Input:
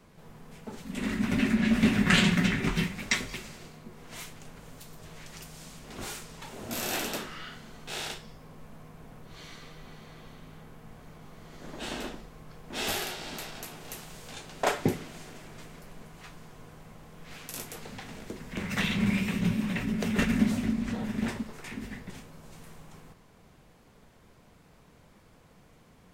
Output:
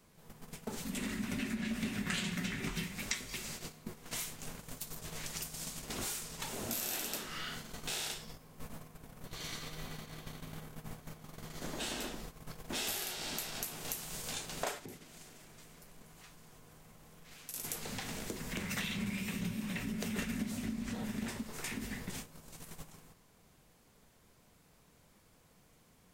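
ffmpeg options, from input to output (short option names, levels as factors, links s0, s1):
-filter_complex "[0:a]asettb=1/sr,asplit=3[s0][s1][s2];[s0]atrim=end=9.264[s3];[s1]atrim=start=9.26:end=11.58,asetpts=PTS-STARTPTS,afade=t=in:d=0.004:c=qsin,afade=t=out:st=2.316:d=0.004:c=qsin,asplit=2[s4][s5];[s5]adelay=199,lowpass=f=2000:p=1,volume=0.224,asplit=2[s6][s7];[s7]adelay=199,lowpass=f=2000:p=1,volume=0.51,asplit=2[s8][s9];[s9]adelay=199,lowpass=f=2000:p=1,volume=0.51,asplit=2[s10][s11];[s11]adelay=199,lowpass=f=2000:p=1,volume=0.51,asplit=2[s12][s13];[s13]adelay=199,lowpass=f=2000:p=1,volume=0.51[s14];[s4][s6][s8][s10][s12][s14]amix=inputs=6:normalize=0,atrim=end_sample=102312[s15];[s2]atrim=start=11.576[s16];[s3][s15]acrossfade=d=0.004:c1=hsin:c2=qsin[s17];[s17][s16]acrossfade=d=0.004:c1=qsin:c2=hsin,asplit=3[s18][s19][s20];[s18]afade=t=out:st=14.78:d=0.02[s21];[s19]acompressor=threshold=0.00562:ratio=3:attack=3.2:release=140:knee=1:detection=peak,afade=t=in:st=14.78:d=0.02,afade=t=out:st=17.63:d=0.02[s22];[s20]afade=t=in:st=17.63:d=0.02[s23];[s21][s22][s23]amix=inputs=3:normalize=0,agate=range=0.2:threshold=0.00562:ratio=16:detection=peak,highshelf=f=4700:g=12,acompressor=threshold=0.00631:ratio=4,volume=1.88"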